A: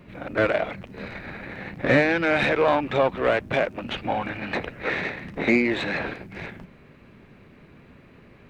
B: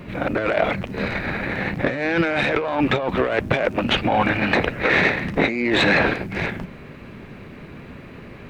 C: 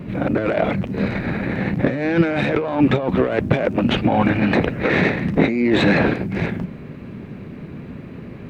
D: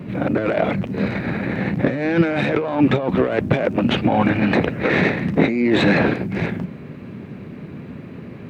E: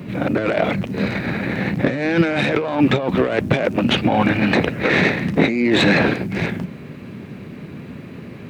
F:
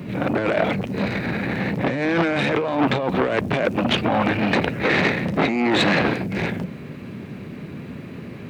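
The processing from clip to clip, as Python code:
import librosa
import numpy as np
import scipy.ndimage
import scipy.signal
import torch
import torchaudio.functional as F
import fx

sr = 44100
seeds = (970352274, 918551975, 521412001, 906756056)

y1 = fx.over_compress(x, sr, threshold_db=-27.0, ratio=-1.0)
y1 = y1 * librosa.db_to_amplitude(7.5)
y2 = fx.peak_eq(y1, sr, hz=180.0, db=11.0, octaves=3.0)
y2 = y2 * librosa.db_to_amplitude(-4.0)
y3 = scipy.signal.sosfilt(scipy.signal.butter(2, 79.0, 'highpass', fs=sr, output='sos'), y2)
y4 = fx.high_shelf(y3, sr, hz=3000.0, db=9.5)
y5 = fx.transformer_sat(y4, sr, knee_hz=1400.0)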